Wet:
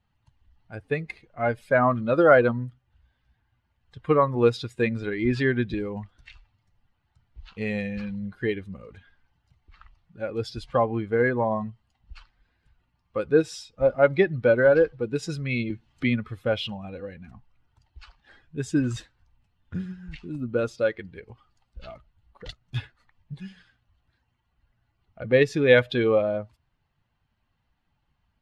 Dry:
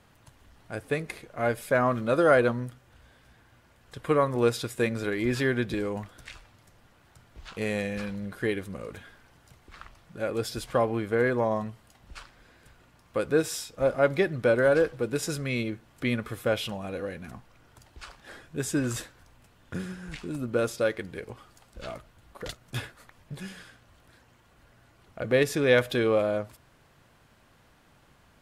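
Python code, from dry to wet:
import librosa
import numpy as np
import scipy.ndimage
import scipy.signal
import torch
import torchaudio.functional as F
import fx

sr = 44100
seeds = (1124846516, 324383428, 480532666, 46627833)

y = fx.bin_expand(x, sr, power=1.5)
y = scipy.signal.sosfilt(scipy.signal.butter(2, 4100.0, 'lowpass', fs=sr, output='sos'), y)
y = fx.band_squash(y, sr, depth_pct=40, at=(15.7, 16.27))
y = y * 10.0 ** (6.0 / 20.0)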